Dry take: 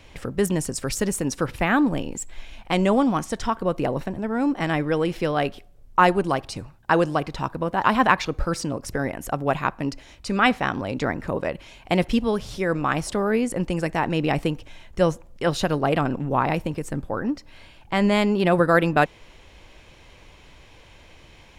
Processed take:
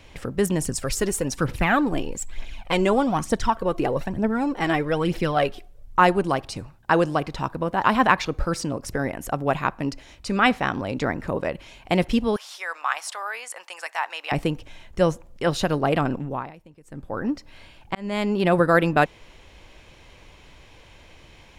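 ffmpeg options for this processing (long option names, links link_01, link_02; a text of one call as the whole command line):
ffmpeg -i in.wav -filter_complex "[0:a]asettb=1/sr,asplit=3[link_01][link_02][link_03];[link_01]atrim=end=0.614[link_04];[link_02]atrim=start=0.61:end=5.99,asetpts=PTS-STARTPTS,afade=type=in:duration=0.004:curve=qsin,afade=type=out:start_time=5.376:duration=0.004:curve=qsin,aphaser=in_gain=1:out_gain=1:delay=3:decay=0.5:speed=1.1:type=triangular[link_05];[link_03]atrim=start=5.986[link_06];[link_04][link_05]acrossfade=duration=0.004:curve1=hsin:curve2=qsin[link_07];[link_07][link_06]acrossfade=duration=0.004:curve1=qsin:curve2=hsin,asettb=1/sr,asplit=3[link_08][link_09][link_10];[link_08]atrim=end=12.364[link_11];[link_09]atrim=start=12.36:end=14.32,asetpts=PTS-STARTPTS,afade=type=in:duration=0.004:curve=qsin,afade=type=out:start_time=1.956:duration=0.004:curve=qsin,highpass=frequency=830:width=0.5412,highpass=frequency=830:width=1.3066[link_12];[link_10]atrim=start=14.316[link_13];[link_11][link_12]acrossfade=duration=0.004:curve1=hsin:curve2=qsin[link_14];[link_14][link_13]acrossfade=duration=0.004:curve1=qsin:curve2=hsin,asplit=4[link_15][link_16][link_17][link_18];[link_15]atrim=end=16.52,asetpts=PTS-STARTPTS,afade=type=out:start_time=16.11:duration=0.41:silence=0.0794328[link_19];[link_16]atrim=start=16.52:end=16.84,asetpts=PTS-STARTPTS,volume=-22dB[link_20];[link_17]atrim=start=16.84:end=17.95,asetpts=PTS-STARTPTS,afade=type=in:duration=0.41:silence=0.0794328,afade=type=out:start_time=1.106:duration=0.004:curve=hsin[link_21];[link_18]atrim=start=17.95,asetpts=PTS-STARTPTS,afade=type=in:duration=0.63:curve=qsin[link_22];[link_19][link_20][link_21][link_22]concat=n=4:v=0:a=1" out.wav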